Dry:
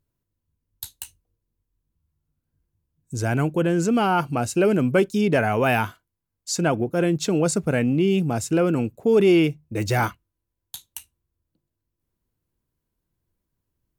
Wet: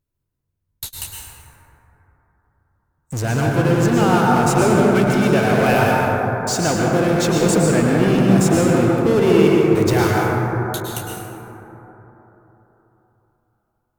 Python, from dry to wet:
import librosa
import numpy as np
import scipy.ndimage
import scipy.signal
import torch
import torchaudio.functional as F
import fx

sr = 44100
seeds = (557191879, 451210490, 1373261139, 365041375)

p1 = fx.peak_eq(x, sr, hz=fx.line((4.82, 800.0), (5.31, 240.0)), db=-14.5, octaves=0.78, at=(4.82, 5.31), fade=0.02)
p2 = fx.fuzz(p1, sr, gain_db=41.0, gate_db=-48.0)
p3 = p1 + (p2 * 10.0 ** (-10.0 / 20.0))
p4 = fx.rev_plate(p3, sr, seeds[0], rt60_s=3.9, hf_ratio=0.25, predelay_ms=95, drr_db=-3.5)
y = p4 * 10.0 ** (-3.5 / 20.0)